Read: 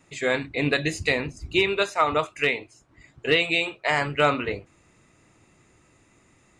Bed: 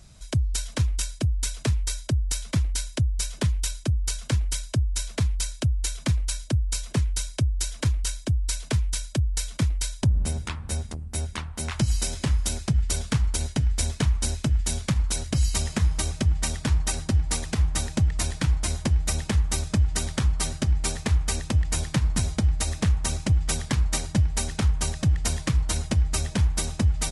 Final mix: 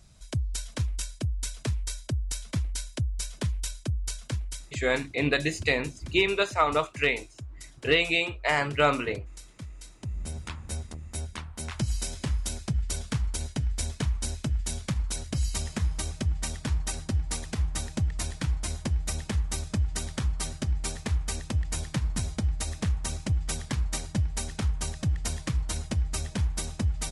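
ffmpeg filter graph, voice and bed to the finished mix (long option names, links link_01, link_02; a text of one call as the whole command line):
ffmpeg -i stem1.wav -i stem2.wav -filter_complex "[0:a]adelay=4600,volume=-2dB[link_01];[1:a]volume=7dB,afade=type=out:start_time=4.06:duration=0.99:silence=0.237137,afade=type=in:start_time=9.99:duration=0.5:silence=0.237137[link_02];[link_01][link_02]amix=inputs=2:normalize=0" out.wav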